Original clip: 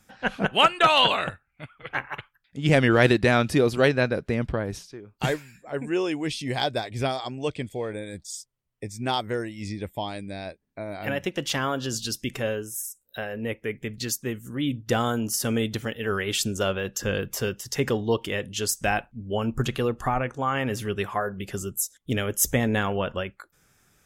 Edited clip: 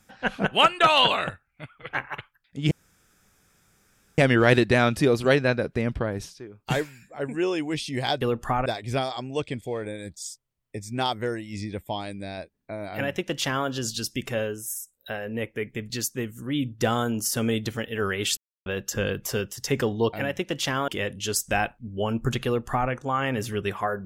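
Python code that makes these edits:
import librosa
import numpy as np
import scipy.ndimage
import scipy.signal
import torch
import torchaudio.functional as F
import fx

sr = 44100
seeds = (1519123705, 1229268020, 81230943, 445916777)

y = fx.edit(x, sr, fx.insert_room_tone(at_s=2.71, length_s=1.47),
    fx.duplicate(start_s=11.0, length_s=0.75, to_s=18.21),
    fx.silence(start_s=16.45, length_s=0.29),
    fx.duplicate(start_s=19.78, length_s=0.45, to_s=6.74), tone=tone)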